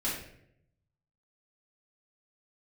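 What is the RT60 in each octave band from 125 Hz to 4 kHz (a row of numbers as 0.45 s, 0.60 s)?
1.3 s, 0.90 s, 0.85 s, 0.60 s, 0.65 s, 0.50 s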